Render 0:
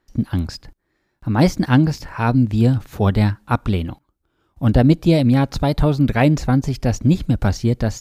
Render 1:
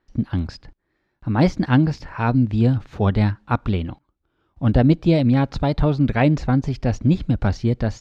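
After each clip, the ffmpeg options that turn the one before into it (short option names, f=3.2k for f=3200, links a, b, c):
-af "lowpass=4.2k,volume=-2dB"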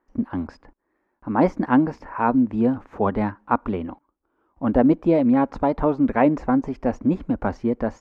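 -af "equalizer=f=125:t=o:w=1:g=-10,equalizer=f=250:t=o:w=1:g=10,equalizer=f=500:t=o:w=1:g=7,equalizer=f=1k:t=o:w=1:g=12,equalizer=f=2k:t=o:w=1:g=4,equalizer=f=4k:t=o:w=1:g=-11,volume=-8.5dB"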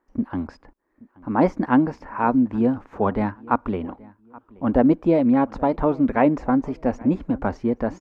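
-filter_complex "[0:a]asplit=2[a][b];[b]adelay=827,lowpass=f=2.8k:p=1,volume=-23dB,asplit=2[c][d];[d]adelay=827,lowpass=f=2.8k:p=1,volume=0.3[e];[a][c][e]amix=inputs=3:normalize=0"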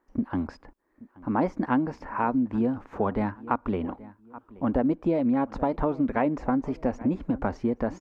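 -af "acompressor=threshold=-23dB:ratio=3"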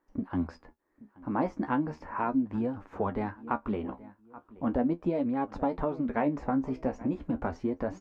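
-af "flanger=delay=9.7:depth=5.9:regen=45:speed=0.37:shape=triangular"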